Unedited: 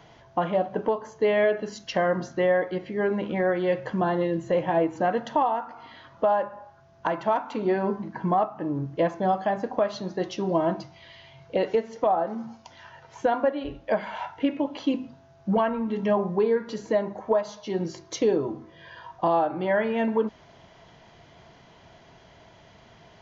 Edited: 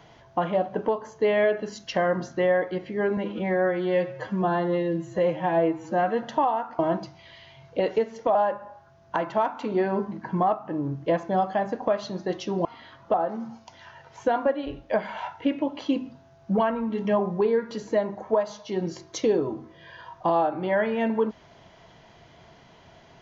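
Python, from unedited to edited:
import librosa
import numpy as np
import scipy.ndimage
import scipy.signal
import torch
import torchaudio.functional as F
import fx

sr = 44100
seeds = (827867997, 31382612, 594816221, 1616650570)

y = fx.edit(x, sr, fx.stretch_span(start_s=3.17, length_s=2.04, factor=1.5),
    fx.swap(start_s=5.77, length_s=0.49, other_s=10.56, other_length_s=1.56), tone=tone)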